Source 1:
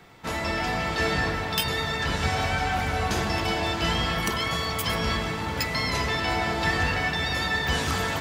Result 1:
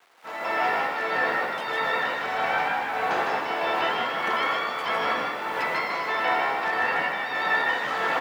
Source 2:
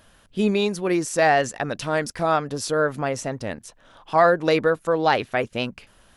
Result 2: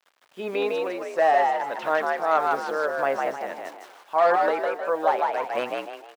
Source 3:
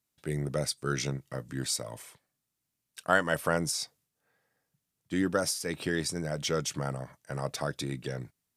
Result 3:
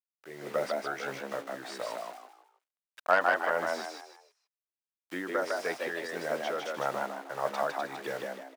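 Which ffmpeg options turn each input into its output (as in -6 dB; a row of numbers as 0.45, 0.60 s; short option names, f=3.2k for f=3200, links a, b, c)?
-filter_complex "[0:a]acrossover=split=1200[a][b];[a]asplit=2[c][d];[d]adelay=22,volume=-11.5dB[e];[c][e]amix=inputs=2:normalize=0[f];[b]aeval=exprs='(mod(9.44*val(0)+1,2)-1)/9.44':c=same[g];[f][g]amix=inputs=2:normalize=0,aemphasis=mode=reproduction:type=75fm,acrusher=bits=7:mix=0:aa=0.000001,tremolo=f=1.6:d=0.57,highshelf=f=3.2k:g=-9,acrossover=split=3700[h][i];[i]acompressor=threshold=-53dB:ratio=4:attack=1:release=60[j];[h][j]amix=inputs=2:normalize=0,asplit=2[k][l];[l]asplit=4[m][n][o][p];[m]adelay=155,afreqshift=70,volume=-3.5dB[q];[n]adelay=310,afreqshift=140,volume=-13.4dB[r];[o]adelay=465,afreqshift=210,volume=-23.3dB[s];[p]adelay=620,afreqshift=280,volume=-33.2dB[t];[q][r][s][t]amix=inputs=4:normalize=0[u];[k][u]amix=inputs=2:normalize=0,dynaudnorm=f=170:g=3:m=13dB,highpass=650,volume=-5dB"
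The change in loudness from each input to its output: +0.5, -2.0, -1.0 LU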